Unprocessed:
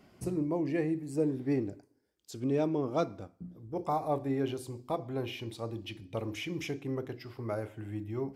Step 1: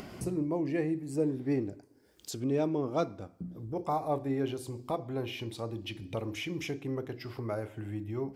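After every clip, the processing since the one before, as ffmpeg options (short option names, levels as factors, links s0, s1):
-af "acompressor=mode=upward:threshold=0.0224:ratio=2.5"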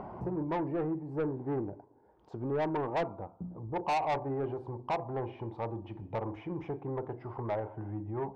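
-af "lowpass=f=910:t=q:w=5.4,equalizer=f=270:t=o:w=0.3:g=-6,asoftclip=type=tanh:threshold=0.0473"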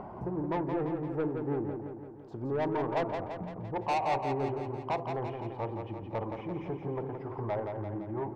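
-af "aecho=1:1:170|340|510|680|850|1020|1190|1360:0.501|0.296|0.174|0.103|0.0607|0.0358|0.0211|0.0125"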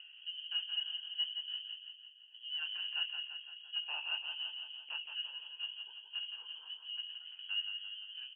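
-filter_complex "[0:a]asplit=3[s0][s1][s2];[s0]bandpass=f=530:t=q:w=8,volume=1[s3];[s1]bandpass=f=1840:t=q:w=8,volume=0.501[s4];[s2]bandpass=f=2480:t=q:w=8,volume=0.355[s5];[s3][s4][s5]amix=inputs=3:normalize=0,asplit=2[s6][s7];[s7]adelay=19,volume=0.562[s8];[s6][s8]amix=inputs=2:normalize=0,lowpass=f=2900:t=q:w=0.5098,lowpass=f=2900:t=q:w=0.6013,lowpass=f=2900:t=q:w=0.9,lowpass=f=2900:t=q:w=2.563,afreqshift=-3400,volume=1.12"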